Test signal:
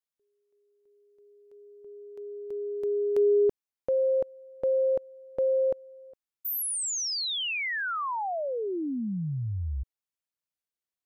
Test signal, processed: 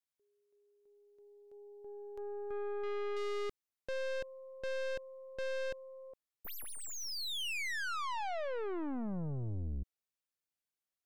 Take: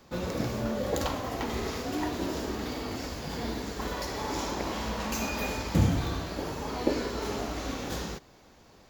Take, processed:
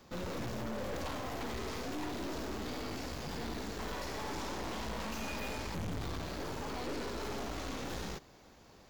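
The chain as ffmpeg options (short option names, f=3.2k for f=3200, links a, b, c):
-filter_complex "[0:a]aeval=exprs='(tanh(79.4*val(0)+0.65)-tanh(0.65))/79.4':c=same,acrossover=split=4800[a][b];[b]acompressor=threshold=-49dB:ratio=4:attack=1:release=60[c];[a][c]amix=inputs=2:normalize=0,volume=1dB"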